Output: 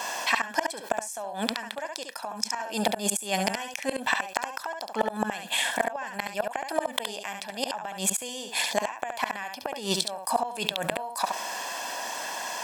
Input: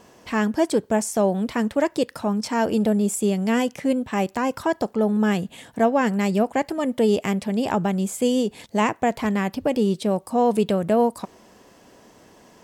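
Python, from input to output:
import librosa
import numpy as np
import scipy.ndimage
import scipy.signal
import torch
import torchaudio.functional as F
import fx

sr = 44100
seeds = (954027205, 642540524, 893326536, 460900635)

p1 = scipy.signal.sosfilt(scipy.signal.butter(2, 800.0, 'highpass', fs=sr, output='sos'), x)
p2 = p1 + 0.58 * np.pad(p1, (int(1.2 * sr / 1000.0), 0))[:len(p1)]
p3 = fx.rider(p2, sr, range_db=10, speed_s=0.5)
p4 = fx.gate_flip(p3, sr, shuts_db=-20.0, range_db=-31)
p5 = p4 + fx.echo_single(p4, sr, ms=70, db=-9.0, dry=0)
p6 = fx.env_flatten(p5, sr, amount_pct=50)
y = p6 * librosa.db_to_amplitude(8.5)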